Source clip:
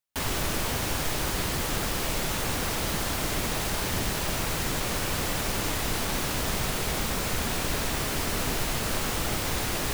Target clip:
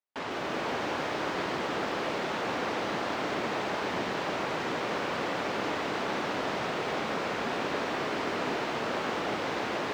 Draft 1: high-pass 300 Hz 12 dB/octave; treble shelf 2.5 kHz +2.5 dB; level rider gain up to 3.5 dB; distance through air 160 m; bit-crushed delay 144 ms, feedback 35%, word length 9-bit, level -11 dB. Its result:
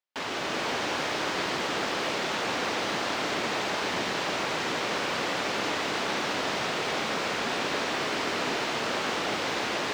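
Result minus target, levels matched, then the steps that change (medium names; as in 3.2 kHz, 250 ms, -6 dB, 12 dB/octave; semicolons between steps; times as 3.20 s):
4 kHz band +4.5 dB
change: treble shelf 2.5 kHz -8.5 dB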